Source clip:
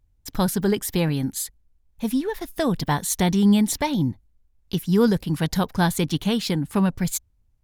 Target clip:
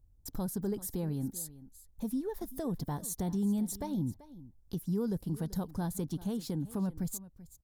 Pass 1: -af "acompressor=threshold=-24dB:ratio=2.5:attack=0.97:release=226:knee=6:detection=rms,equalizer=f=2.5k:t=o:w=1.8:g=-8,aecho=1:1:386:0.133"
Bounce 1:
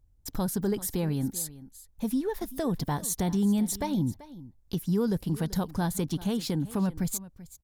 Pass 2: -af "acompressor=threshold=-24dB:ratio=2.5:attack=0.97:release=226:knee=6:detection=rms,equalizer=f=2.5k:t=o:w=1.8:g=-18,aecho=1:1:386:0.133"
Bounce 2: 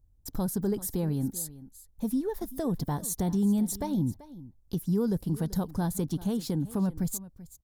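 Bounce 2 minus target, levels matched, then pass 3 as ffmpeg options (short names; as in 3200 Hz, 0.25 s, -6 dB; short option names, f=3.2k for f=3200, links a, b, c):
compressor: peak gain reduction -5.5 dB
-af "acompressor=threshold=-33dB:ratio=2.5:attack=0.97:release=226:knee=6:detection=rms,equalizer=f=2.5k:t=o:w=1.8:g=-18,aecho=1:1:386:0.133"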